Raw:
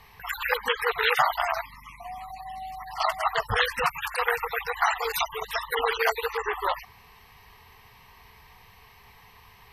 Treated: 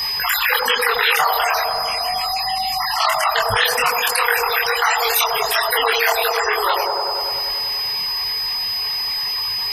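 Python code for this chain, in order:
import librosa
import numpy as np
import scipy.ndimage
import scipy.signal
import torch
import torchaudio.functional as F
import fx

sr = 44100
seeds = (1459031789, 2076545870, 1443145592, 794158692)

y = fx.dereverb_blind(x, sr, rt60_s=1.3)
y = fx.chorus_voices(y, sr, voices=6, hz=0.74, base_ms=24, depth_ms=4.7, mix_pct=45)
y = y + 10.0 ** (-50.0 / 20.0) * np.sin(2.0 * np.pi * 5000.0 * np.arange(len(y)) / sr)
y = fx.tilt_eq(y, sr, slope=2.5)
y = fx.echo_wet_bandpass(y, sr, ms=97, feedback_pct=72, hz=460.0, wet_db=-6.5)
y = fx.env_flatten(y, sr, amount_pct=70)
y = F.gain(torch.from_numpy(y), 6.5).numpy()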